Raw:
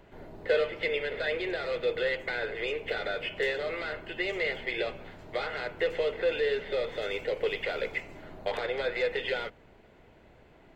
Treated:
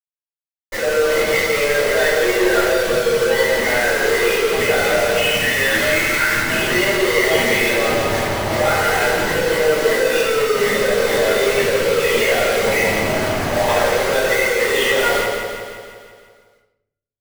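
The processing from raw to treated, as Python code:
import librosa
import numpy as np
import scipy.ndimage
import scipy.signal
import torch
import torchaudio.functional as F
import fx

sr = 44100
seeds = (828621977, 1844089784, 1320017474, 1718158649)

p1 = fx.fade_in_head(x, sr, length_s=0.99)
p2 = fx.spec_box(p1, sr, start_s=3.24, length_s=0.82, low_hz=360.0, high_hz=1300.0, gain_db=-15)
p3 = scipy.signal.sosfilt(scipy.signal.butter(2, 110.0, 'highpass', fs=sr, output='sos'), p2)
p4 = fx.spec_gate(p3, sr, threshold_db=-15, keep='strong')
p5 = fx.over_compress(p4, sr, threshold_db=-41.0, ratio=-1.0)
p6 = p4 + F.gain(torch.from_numpy(p5), 0.5).numpy()
p7 = fx.stretch_vocoder_free(p6, sr, factor=1.6)
p8 = fx.quant_companded(p7, sr, bits=2)
p9 = p8 + fx.echo_feedback(p8, sr, ms=171, feedback_pct=58, wet_db=-6.0, dry=0)
p10 = fx.room_shoebox(p9, sr, seeds[0], volume_m3=170.0, walls='mixed', distance_m=4.9)
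y = F.gain(torch.from_numpy(p10), -5.0).numpy()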